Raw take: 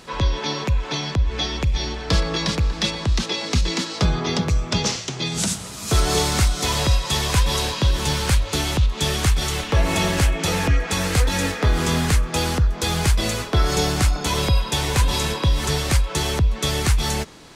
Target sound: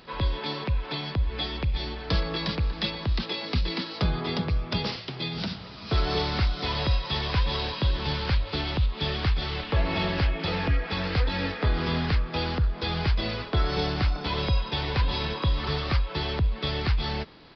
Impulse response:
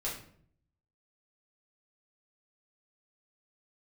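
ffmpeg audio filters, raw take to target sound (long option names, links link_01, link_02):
-filter_complex "[0:a]asettb=1/sr,asplit=3[link_01][link_02][link_03];[link_01]atrim=end=15.374[link_04];[link_02]atrim=start=15.37:end=16.03,asetpts=PTS-STARTPTS,afade=type=in:duration=0.004:curve=qsin,afade=type=out:start_time=0.656:duration=0.004:curve=qsin,equalizer=frequency=1200:width=6.8:gain=7.5[link_05];[link_03]atrim=start=16.026[link_06];[link_04][link_05]acrossfade=duration=0.004:curve1=hsin:curve2=qsin[link_07];[link_07][link_06]acrossfade=duration=0.004:curve1=qsin:curve2=hsin,asplit=2[link_08][link_09];[link_09]acrusher=bits=5:mode=log:mix=0:aa=0.000001,volume=-8dB[link_10];[link_08][link_10]amix=inputs=2:normalize=0,aresample=11025,aresample=44100,volume=-9dB"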